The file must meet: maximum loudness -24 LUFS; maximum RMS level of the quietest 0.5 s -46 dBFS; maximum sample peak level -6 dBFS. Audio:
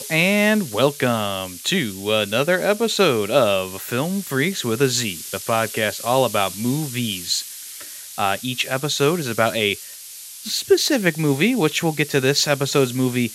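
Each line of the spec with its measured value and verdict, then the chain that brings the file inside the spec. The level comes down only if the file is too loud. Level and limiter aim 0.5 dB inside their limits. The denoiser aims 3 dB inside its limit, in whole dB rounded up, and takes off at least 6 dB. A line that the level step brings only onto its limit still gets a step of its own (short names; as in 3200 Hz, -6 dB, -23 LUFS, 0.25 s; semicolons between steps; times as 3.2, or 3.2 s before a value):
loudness -20.0 LUFS: fail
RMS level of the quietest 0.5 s -38 dBFS: fail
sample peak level -2.0 dBFS: fail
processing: denoiser 7 dB, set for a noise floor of -38 dBFS; gain -4.5 dB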